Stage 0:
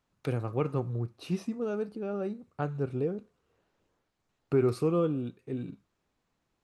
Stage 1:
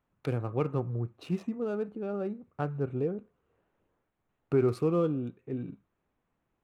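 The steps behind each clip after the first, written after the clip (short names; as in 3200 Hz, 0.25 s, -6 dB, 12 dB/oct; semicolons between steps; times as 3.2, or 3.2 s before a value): Wiener smoothing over 9 samples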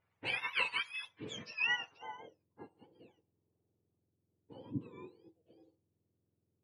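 spectrum mirrored in octaves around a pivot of 1100 Hz; low-pass sweep 2300 Hz -> 330 Hz, 1.67–2.43; gain +1 dB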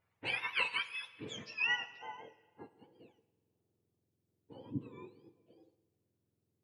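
plate-style reverb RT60 1.5 s, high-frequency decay 0.85×, DRR 15 dB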